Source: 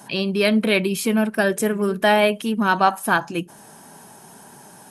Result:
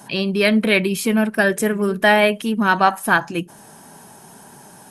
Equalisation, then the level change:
dynamic equaliser 1,900 Hz, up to +6 dB, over −36 dBFS, Q 2.6
low-shelf EQ 91 Hz +5.5 dB
+1.0 dB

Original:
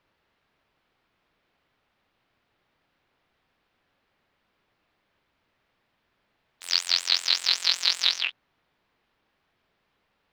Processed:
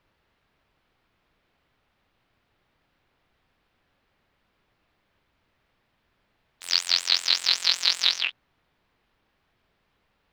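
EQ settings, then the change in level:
low-shelf EQ 120 Hz +8.5 dB
+1.0 dB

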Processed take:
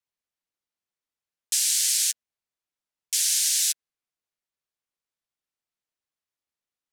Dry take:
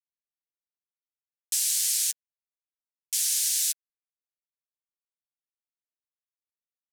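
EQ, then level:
high-shelf EQ 11,000 Hz −11 dB
+6.0 dB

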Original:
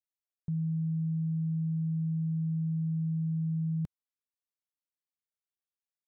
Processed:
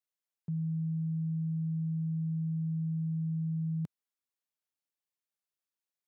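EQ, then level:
high-pass filter 140 Hz
0.0 dB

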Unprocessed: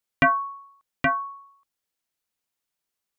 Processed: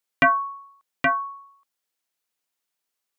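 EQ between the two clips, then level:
low-shelf EQ 170 Hz −11.5 dB
+2.0 dB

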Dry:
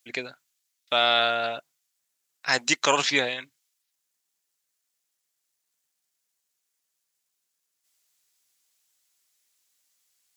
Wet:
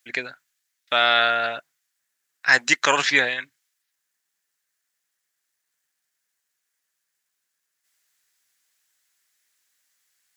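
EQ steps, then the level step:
parametric band 1,700 Hz +10.5 dB 0.73 octaves
0.0 dB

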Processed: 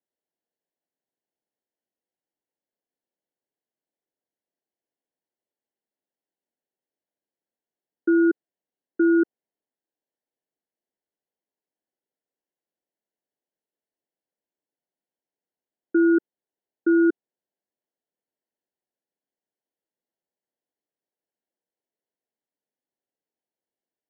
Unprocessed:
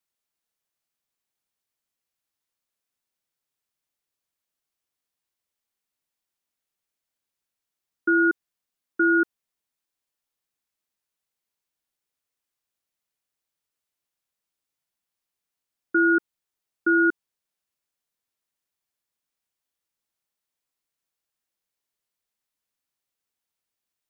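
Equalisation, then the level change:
moving average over 36 samples
high-pass filter 270 Hz
+7.0 dB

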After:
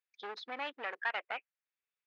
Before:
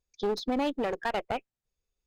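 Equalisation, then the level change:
four-pole ladder band-pass 2,500 Hz, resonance 25%
spectral tilt −2.5 dB per octave
high-shelf EQ 3,700 Hz −11 dB
+16.0 dB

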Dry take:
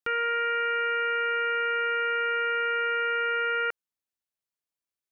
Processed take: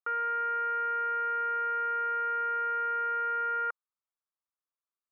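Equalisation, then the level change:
high-pass filter 410 Hz
low-pass with resonance 1,200 Hz, resonance Q 4.1
−8.5 dB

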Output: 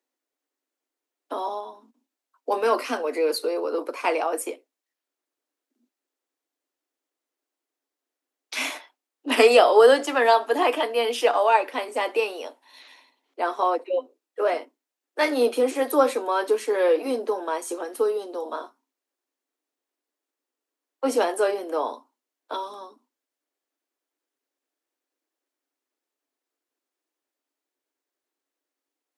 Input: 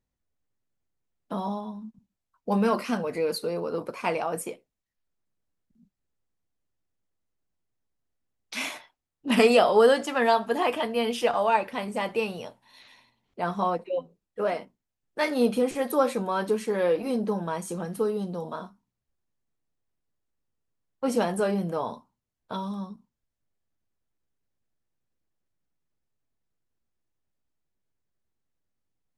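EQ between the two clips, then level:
Butterworth high-pass 260 Hz 96 dB per octave
+4.0 dB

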